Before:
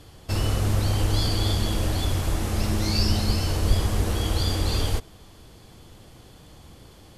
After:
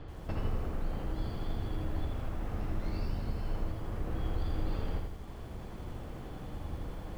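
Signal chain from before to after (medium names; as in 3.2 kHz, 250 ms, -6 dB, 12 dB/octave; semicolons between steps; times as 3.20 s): octave divider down 2 oct, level +1 dB; compression 3:1, threshold -36 dBFS, peak gain reduction 19 dB; low-pass 1.8 kHz 12 dB/octave; gain riding within 3 dB 2 s; hum notches 50/100/150/200/250/300/350/400 Hz; bit-crushed delay 82 ms, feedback 55%, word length 10-bit, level -4 dB; trim +1 dB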